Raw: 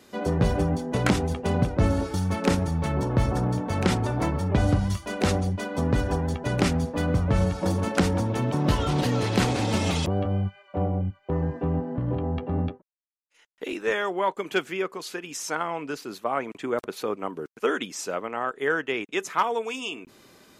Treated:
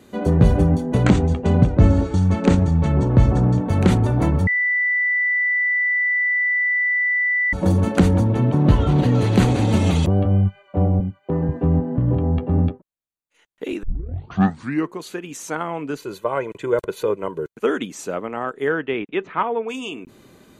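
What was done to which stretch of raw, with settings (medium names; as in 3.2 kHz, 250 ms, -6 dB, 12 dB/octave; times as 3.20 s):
1.04–3.61 s: steep low-pass 8.5 kHz 48 dB/octave
4.47–7.53 s: bleep 1.98 kHz -17 dBFS
8.24–9.15 s: low-pass 3.5 kHz 6 dB/octave
11.00–11.49 s: high-pass 150 Hz
13.83 s: tape start 1.17 s
15.98–17.52 s: comb 2 ms, depth 73%
18.69–19.68 s: low-pass 4.8 kHz -> 2.4 kHz 24 dB/octave
whole clip: bass shelf 420 Hz +10 dB; band-stop 5.2 kHz, Q 5.1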